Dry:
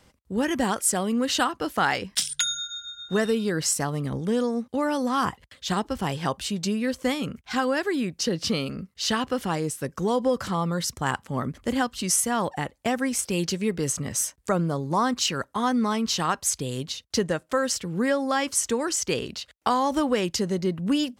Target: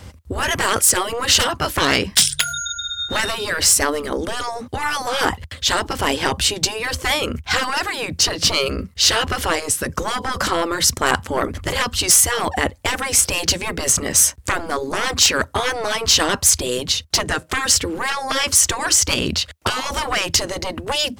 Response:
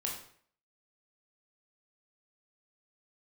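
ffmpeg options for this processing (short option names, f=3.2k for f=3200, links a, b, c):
-af "equalizer=f=82:t=o:w=1:g=14.5,aeval=exprs='0.422*(cos(1*acos(clip(val(0)/0.422,-1,1)))-cos(1*PI/2))+0.15*(cos(5*acos(clip(val(0)/0.422,-1,1)))-cos(5*PI/2))+0.00422*(cos(7*acos(clip(val(0)/0.422,-1,1)))-cos(7*PI/2))':c=same,afftfilt=real='re*lt(hypot(re,im),0.447)':imag='im*lt(hypot(re,im),0.447)':win_size=1024:overlap=0.75,volume=6dB"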